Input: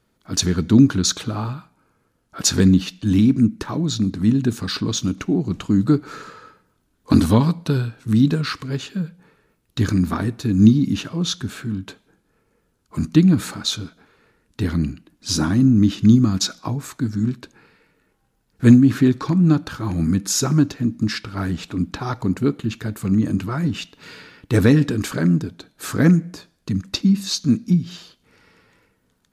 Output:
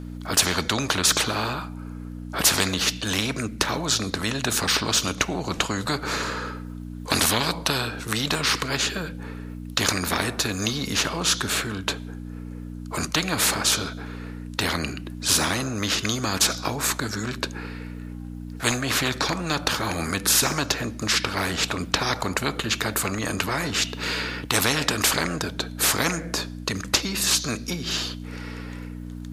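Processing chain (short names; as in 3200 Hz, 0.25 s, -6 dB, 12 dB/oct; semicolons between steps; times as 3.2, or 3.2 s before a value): hum 60 Hz, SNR 22 dB; spectral compressor 4:1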